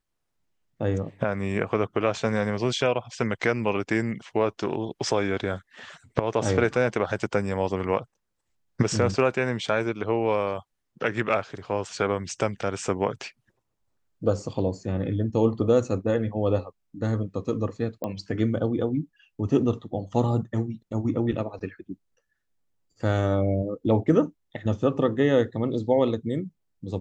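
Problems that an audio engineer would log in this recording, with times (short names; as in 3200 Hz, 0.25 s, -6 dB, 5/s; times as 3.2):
18.04 pop -18 dBFS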